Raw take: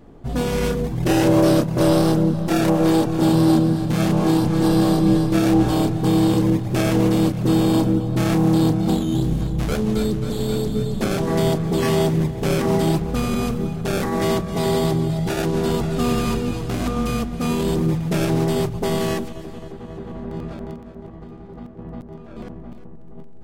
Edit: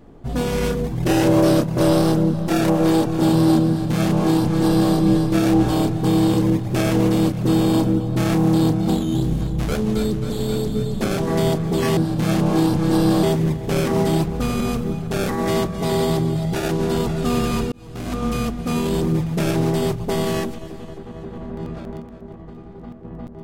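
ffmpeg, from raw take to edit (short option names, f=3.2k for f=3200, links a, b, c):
-filter_complex "[0:a]asplit=4[a][b][c][d];[a]atrim=end=11.972[e];[b]atrim=start=3.678:end=4.942[f];[c]atrim=start=11.968:end=16.46,asetpts=PTS-STARTPTS,afade=t=out:st=4.488:d=0.004:c=hsin[g];[d]atrim=start=16.46,asetpts=PTS-STARTPTS,afade=t=in:d=0.55[h];[e][f]acrossfade=d=0.004:c1=hsin:c2=hsin[i];[g][h]concat=n=2:v=0:a=1[j];[i][j]acrossfade=d=0.004:c1=hsin:c2=hsin"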